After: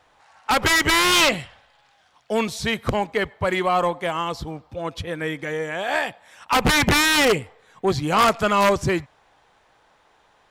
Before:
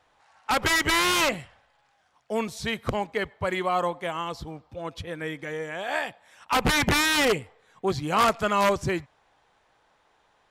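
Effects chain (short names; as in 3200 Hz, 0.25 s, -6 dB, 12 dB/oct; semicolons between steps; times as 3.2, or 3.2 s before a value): 1.12–2.57 bell 3600 Hz +5.5 dB 1.1 oct; soft clip -16 dBFS, distortion -19 dB; gain +6 dB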